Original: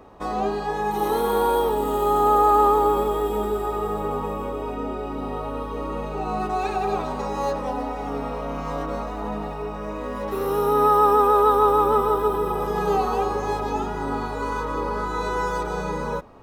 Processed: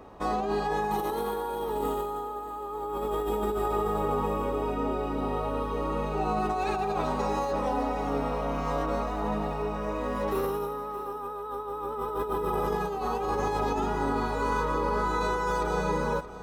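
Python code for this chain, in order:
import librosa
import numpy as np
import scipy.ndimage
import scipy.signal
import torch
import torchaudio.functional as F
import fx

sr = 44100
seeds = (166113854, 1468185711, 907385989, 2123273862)

y = fx.over_compress(x, sr, threshold_db=-26.0, ratio=-1.0)
y = y + 10.0 ** (-15.0 / 20.0) * np.pad(y, (int(625 * sr / 1000.0), 0))[:len(y)]
y = F.gain(torch.from_numpy(y), -3.5).numpy()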